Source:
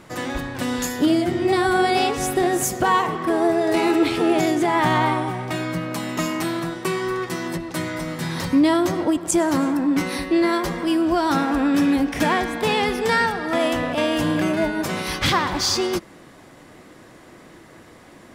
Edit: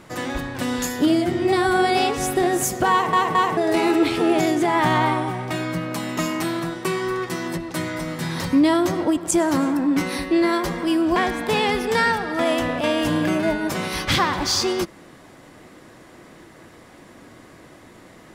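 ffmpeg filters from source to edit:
-filter_complex "[0:a]asplit=5[a][b][c][d][e];[a]atrim=end=3.132[f];[b]atrim=start=2.908:end=3.132[g];[c]atrim=start=2.908:end=3.132[h];[d]atrim=start=3.568:end=11.162[i];[e]atrim=start=12.298[j];[f][g]acrossfade=d=0.004:c1=hsin:c2=hsin[k];[k][h]acrossfade=d=0.004:c1=hsin:c2=hsin[l];[l][i]acrossfade=d=0.004:c1=hsin:c2=hsin[m];[m][j]acrossfade=d=0.004:c1=hsin:c2=hsin"

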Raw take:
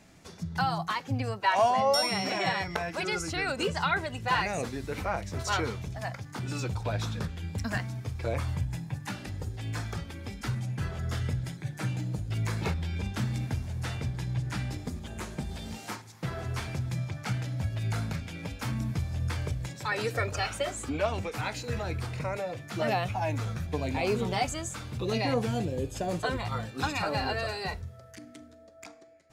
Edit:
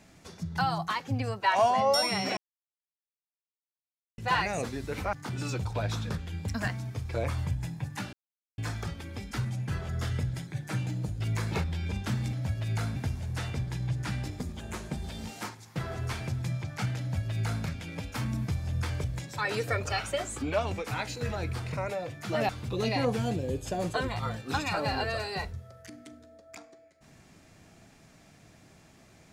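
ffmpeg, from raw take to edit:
-filter_complex "[0:a]asplit=9[a][b][c][d][e][f][g][h][i];[a]atrim=end=2.37,asetpts=PTS-STARTPTS,afade=t=out:st=2.366:d=0.004:c=hsin[j];[b]atrim=start=2.37:end=4.18,asetpts=PTS-STARTPTS,volume=0[k];[c]atrim=start=4.18:end=5.132,asetpts=PTS-STARTPTS,afade=t=in:d=0.004:c=hsin[l];[d]atrim=start=6.228:end=9.23,asetpts=PTS-STARTPTS,afade=t=out:st=2.998:d=0.004:c=hsin[m];[e]atrim=start=9.23:end=9.68,asetpts=PTS-STARTPTS,volume=0[n];[f]atrim=start=9.68:end=13.432,asetpts=PTS-STARTPTS,afade=t=in:d=0.004:c=hsin[o];[g]atrim=start=17.478:end=18.112[p];[h]atrim=start=13.428:end=22.962[q];[i]atrim=start=24.778[r];[j][k][l]concat=n=3:v=0:a=1[s];[m][n][o]concat=n=3:v=0:a=1[t];[s][t]acrossfade=d=0.004:c1=hsin:c2=hsin[u];[u][p]acrossfade=d=0.004:c1=hsin:c2=hsin[v];[v][q]acrossfade=d=0.004:c1=hsin:c2=hsin[w];[w][r]acrossfade=d=0.004:c1=hsin:c2=hsin"

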